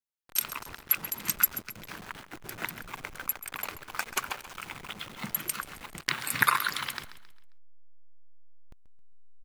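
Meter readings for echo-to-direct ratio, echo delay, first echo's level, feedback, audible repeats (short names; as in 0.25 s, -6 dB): -13.5 dB, 0.134 s, -14.0 dB, 39%, 3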